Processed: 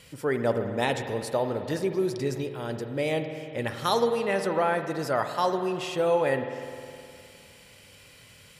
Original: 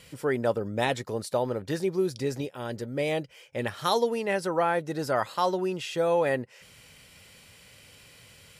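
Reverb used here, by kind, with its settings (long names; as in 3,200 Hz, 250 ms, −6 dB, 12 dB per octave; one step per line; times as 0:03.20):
spring reverb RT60 2.5 s, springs 51 ms, chirp 30 ms, DRR 7 dB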